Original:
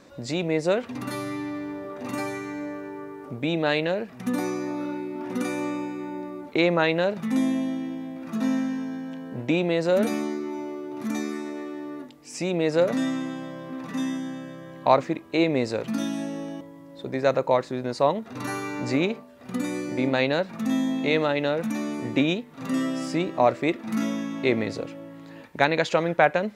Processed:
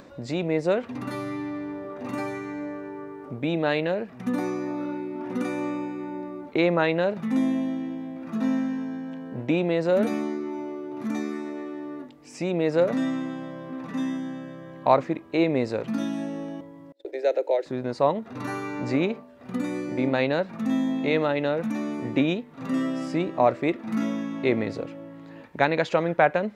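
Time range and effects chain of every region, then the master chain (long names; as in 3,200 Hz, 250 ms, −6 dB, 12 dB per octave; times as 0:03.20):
0:16.92–0:17.66: Butterworth high-pass 290 Hz 96 dB per octave + noise gate −41 dBFS, range −26 dB + phaser with its sweep stopped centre 460 Hz, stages 4
whole clip: high-shelf EQ 3,900 Hz −10.5 dB; upward compression, threshold −43 dBFS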